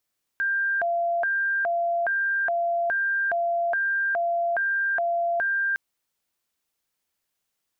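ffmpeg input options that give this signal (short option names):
-f lavfi -i "aevalsrc='0.0841*sin(2*PI*(1138*t+452/1.2*(0.5-abs(mod(1.2*t,1)-0.5))))':d=5.36:s=44100"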